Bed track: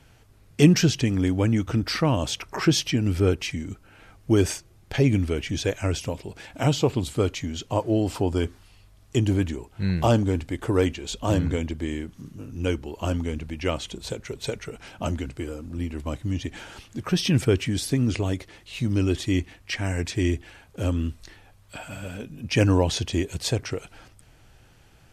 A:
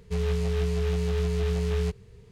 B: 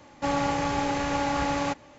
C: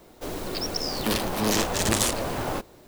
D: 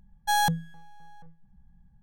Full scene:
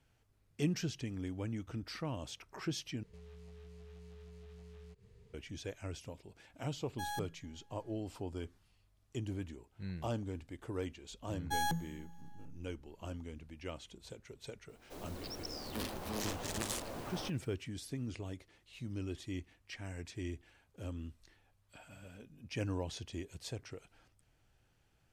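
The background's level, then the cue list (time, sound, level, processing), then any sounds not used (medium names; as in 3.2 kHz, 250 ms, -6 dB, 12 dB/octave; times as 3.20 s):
bed track -18 dB
3.03 s: replace with A -10.5 dB + compression 4:1, threshold -44 dBFS
6.71 s: add D -17.5 dB
11.23 s: add D -1 dB + feedback comb 170 Hz, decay 1.4 s, mix 70%
14.69 s: add C -15.5 dB
not used: B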